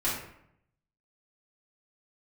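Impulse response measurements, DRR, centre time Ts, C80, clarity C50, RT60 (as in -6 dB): -8.5 dB, 48 ms, 6.0 dB, 2.5 dB, 0.70 s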